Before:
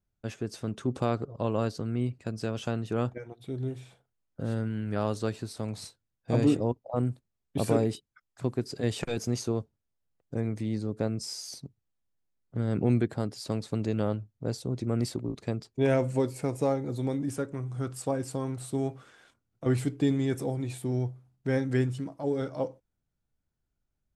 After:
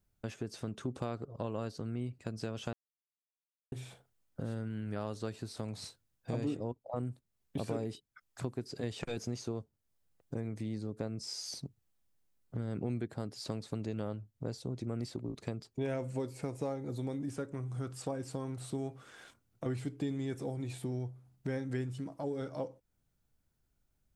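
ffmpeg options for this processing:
-filter_complex "[0:a]asplit=3[s0][s1][s2];[s0]atrim=end=2.73,asetpts=PTS-STARTPTS,afade=t=out:st=2.726:d=0.004:c=hsin[s3];[s1]atrim=start=2.73:end=3.72,asetpts=PTS-STARTPTS,volume=0[s4];[s2]atrim=start=3.72,asetpts=PTS-STARTPTS,afade=t=in:d=0.004:c=hsin[s5];[s3][s4][s5]concat=n=3:v=0:a=1,acrossover=split=6500[s6][s7];[s7]acompressor=threshold=0.00158:ratio=4:attack=1:release=60[s8];[s6][s8]amix=inputs=2:normalize=0,highshelf=f=7900:g=5,acompressor=threshold=0.00631:ratio=2.5,volume=1.58"

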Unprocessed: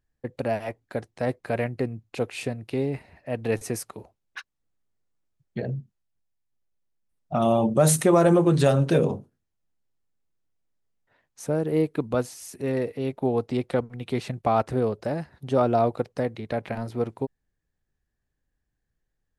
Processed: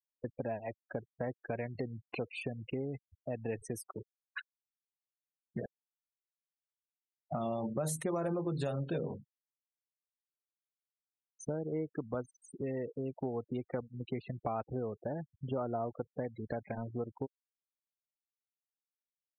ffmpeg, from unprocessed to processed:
-filter_complex "[0:a]asettb=1/sr,asplit=3[s0][s1][s2];[s0]atrim=end=1.754[s3];[s1]atrim=start=1.75:end=2.91,asetpts=PTS-STARTPTS,afade=t=in:d=0.004:c=qsin,afade=t=out:st=1.156:d=0.004:c=qsin,acompressor=mode=upward:threshold=0.0316:ratio=2.5:attack=3.2:release=140:knee=2.83:detection=peak[s4];[s2]atrim=start=2.906[s5];[s3][s4]acrossfade=d=0.004:c1=hsin:c2=qsin[s6];[s6][s5]acrossfade=d=0.004:c1=qsin:c2=hsin,asplit=2[s7][s8];[s7]atrim=end=5.66,asetpts=PTS-STARTPTS,afade=t=out:st=5.656:d=0.004:c=hsin[s9];[s8]atrim=start=5.66,asetpts=PTS-STARTPTS,afade=t=in:d=1.75[s10];[s9][s10]concat=n=2:v=0:a=1,afftfilt=real='re*gte(hypot(re,im),0.0282)':imag='im*gte(hypot(re,im),0.0282)':win_size=1024:overlap=0.75,acompressor=threshold=0.0126:ratio=3"

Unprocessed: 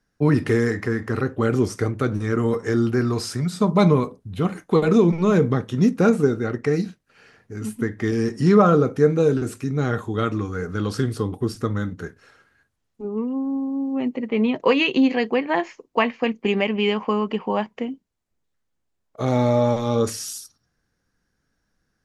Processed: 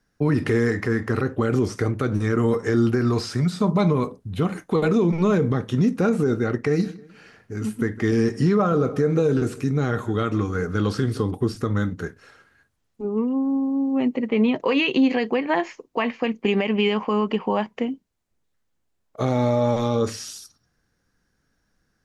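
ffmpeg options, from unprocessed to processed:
-filter_complex "[0:a]asettb=1/sr,asplit=3[s0][s1][s2];[s0]atrim=end=6.494[s3];[s1]atrim=start=6.49:end=11.31,asetpts=PTS-STARTPTS,afade=t=in:d=0.004:c=qsin,afade=t=out:st=4.816:d=0.004:c=qsin,asplit=2[s4][s5];[s5]adelay=156,lowpass=f=4000:p=1,volume=0.0944,asplit=2[s6][s7];[s7]adelay=156,lowpass=f=4000:p=1,volume=0.34,asplit=2[s8][s9];[s9]adelay=156,lowpass=f=4000:p=1,volume=0.34[s10];[s4][s6][s8][s10]amix=inputs=4:normalize=0,atrim=end_sample=212562[s11];[s2]atrim=start=11.306[s12];[s3][s11]acrossfade=d=0.004:c1=hsin:c2=qsin[s13];[s13][s12]acrossfade=d=0.004:c1=qsin:c2=hsin,acrossover=split=5300[s14][s15];[s15]acompressor=threshold=0.00501:ratio=4:attack=1:release=60[s16];[s14][s16]amix=inputs=2:normalize=0,alimiter=limit=0.2:level=0:latency=1:release=78,volume=1.33"

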